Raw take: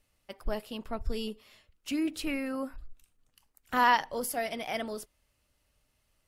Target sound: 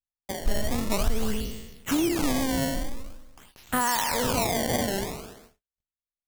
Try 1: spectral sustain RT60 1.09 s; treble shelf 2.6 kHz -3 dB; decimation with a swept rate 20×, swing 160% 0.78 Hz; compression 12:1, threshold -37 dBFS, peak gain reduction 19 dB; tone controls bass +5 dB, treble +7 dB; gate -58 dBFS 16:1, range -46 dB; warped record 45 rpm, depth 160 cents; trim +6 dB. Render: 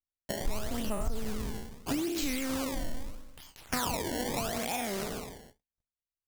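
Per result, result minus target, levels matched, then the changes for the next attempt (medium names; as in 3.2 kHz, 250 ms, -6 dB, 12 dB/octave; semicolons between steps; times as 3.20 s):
compression: peak gain reduction +8 dB; decimation with a swept rate: distortion +5 dB
change: compression 12:1, threshold -28.5 dBFS, peak gain reduction 11.5 dB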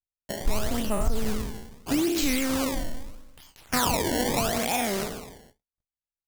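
decimation with a swept rate: distortion +5 dB
change: decimation with a swept rate 20×, swing 160% 0.47 Hz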